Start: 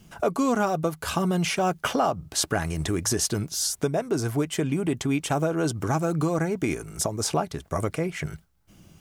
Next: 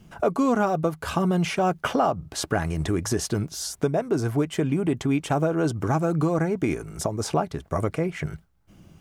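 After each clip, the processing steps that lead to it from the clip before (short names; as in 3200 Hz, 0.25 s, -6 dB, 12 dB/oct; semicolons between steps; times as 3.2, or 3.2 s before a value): high shelf 3000 Hz -9 dB; gain +2 dB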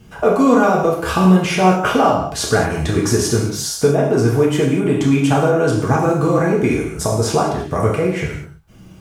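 non-linear reverb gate 0.26 s falling, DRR -3.5 dB; gain +4.5 dB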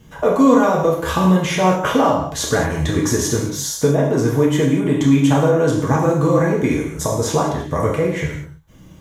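ripple EQ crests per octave 1.1, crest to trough 7 dB; gain -1.5 dB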